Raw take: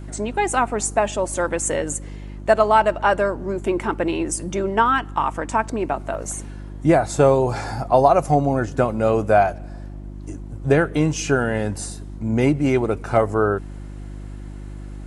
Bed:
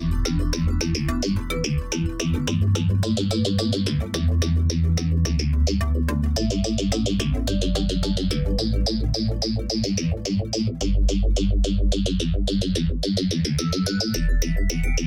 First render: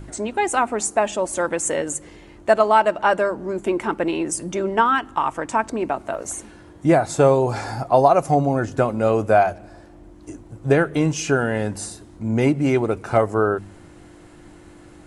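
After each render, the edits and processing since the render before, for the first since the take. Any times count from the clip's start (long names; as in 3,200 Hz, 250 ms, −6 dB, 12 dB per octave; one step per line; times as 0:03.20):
hum removal 50 Hz, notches 5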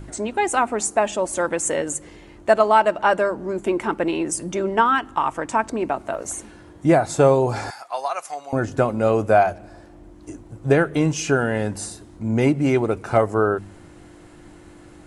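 0:07.70–0:08.53: high-pass filter 1,400 Hz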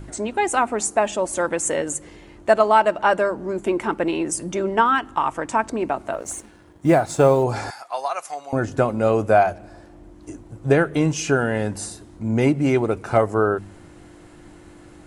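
0:06.19–0:07.44: mu-law and A-law mismatch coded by A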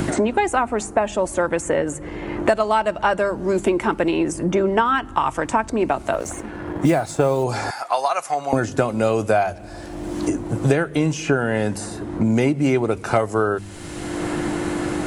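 multiband upward and downward compressor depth 100%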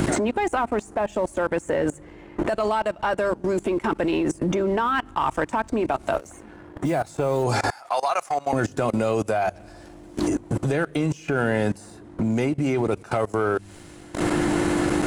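leveller curve on the samples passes 1
output level in coarse steps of 22 dB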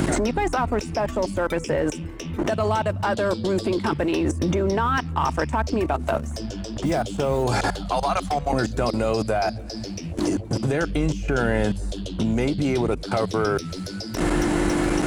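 mix in bed −9 dB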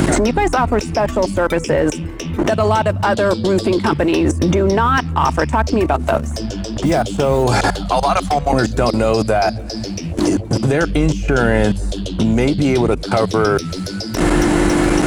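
level +7.5 dB
brickwall limiter −3 dBFS, peak gain reduction 1 dB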